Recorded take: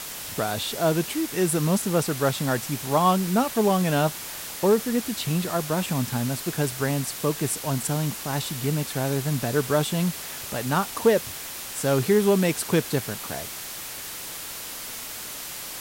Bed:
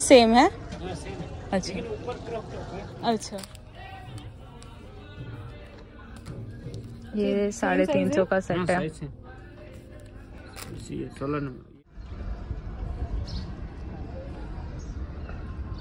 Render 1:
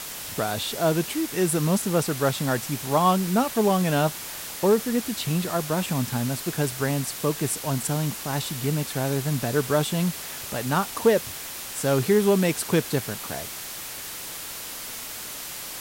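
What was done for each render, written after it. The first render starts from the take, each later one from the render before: nothing audible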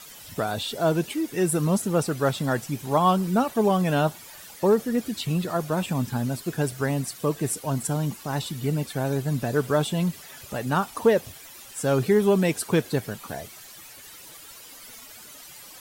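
denoiser 13 dB, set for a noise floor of -36 dBFS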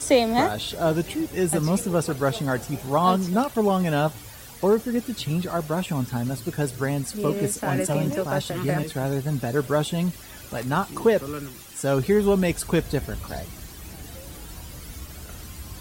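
add bed -4 dB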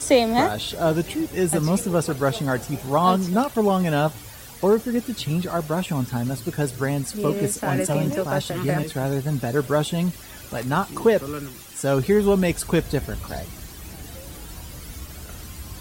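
gain +1.5 dB

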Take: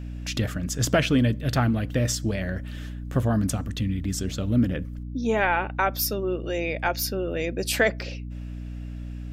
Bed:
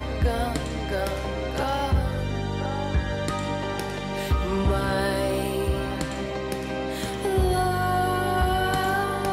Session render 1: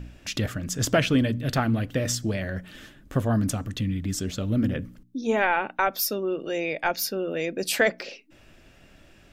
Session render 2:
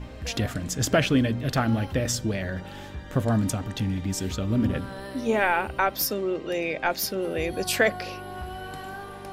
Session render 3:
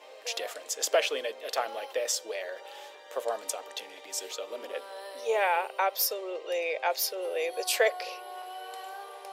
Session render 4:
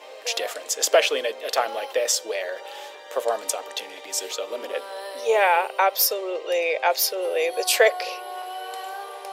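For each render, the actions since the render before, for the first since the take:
de-hum 60 Hz, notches 5
add bed -13.5 dB
elliptic high-pass 460 Hz, stop band 70 dB; bell 1500 Hz -8 dB 0.76 oct
gain +7.5 dB

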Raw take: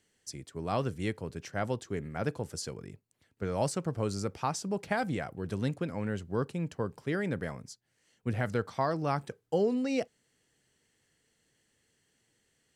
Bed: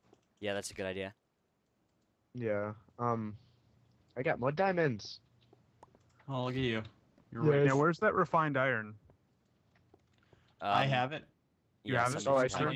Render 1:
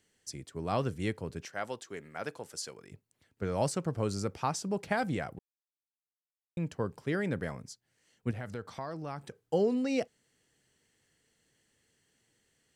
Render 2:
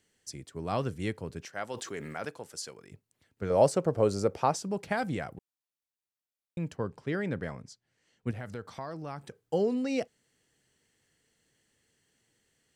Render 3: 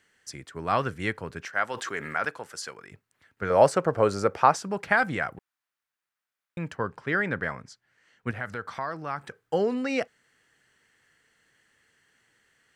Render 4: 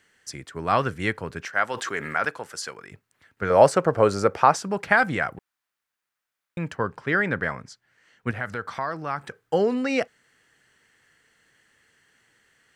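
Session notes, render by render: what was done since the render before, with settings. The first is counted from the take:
1.45–2.92 HPF 740 Hz 6 dB/oct; 5.39–6.57 mute; 8.31–9.43 compressor 2:1, threshold -42 dBFS
1.74–2.25 fast leveller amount 70%; 3.5–4.57 bell 540 Hz +10.5 dB 1.4 oct; 6.76–8.27 air absorption 54 m
bell 1500 Hz +14 dB 1.7 oct
gain +3.5 dB; limiter -3 dBFS, peak gain reduction 2.5 dB

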